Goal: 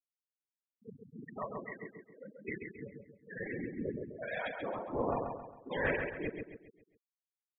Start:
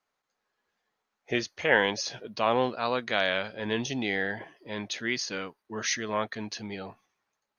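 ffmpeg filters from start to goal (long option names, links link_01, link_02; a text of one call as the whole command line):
ffmpeg -i in.wav -filter_complex "[0:a]areverse,adynamicequalizer=threshold=0.00708:dfrequency=380:dqfactor=5.3:tfrequency=380:tqfactor=5.3:attack=5:release=100:ratio=0.375:range=2:mode=boostabove:tftype=bell,adynamicsmooth=sensitivity=3:basefreq=530,highshelf=frequency=7200:gain=11.5,aeval=exprs='clip(val(0),-1,0.0422)':channel_layout=same,afftfilt=real='hypot(re,im)*cos(2*PI*random(0))':imag='hypot(re,im)*sin(2*PI*random(1))':win_size=512:overlap=0.75,afftfilt=real='re*gte(hypot(re,im),0.0447)':imag='im*gte(hypot(re,im),0.0447)':win_size=1024:overlap=0.75,asplit=2[link_01][link_02];[link_02]adelay=135,lowpass=frequency=4400:poles=1,volume=-5dB,asplit=2[link_03][link_04];[link_04]adelay=135,lowpass=frequency=4400:poles=1,volume=0.42,asplit=2[link_05][link_06];[link_06]adelay=135,lowpass=frequency=4400:poles=1,volume=0.42,asplit=2[link_07][link_08];[link_08]adelay=135,lowpass=frequency=4400:poles=1,volume=0.42,asplit=2[link_09][link_10];[link_10]adelay=135,lowpass=frequency=4400:poles=1,volume=0.42[link_11];[link_01][link_03][link_05][link_07][link_09][link_11]amix=inputs=6:normalize=0,volume=-2.5dB" out.wav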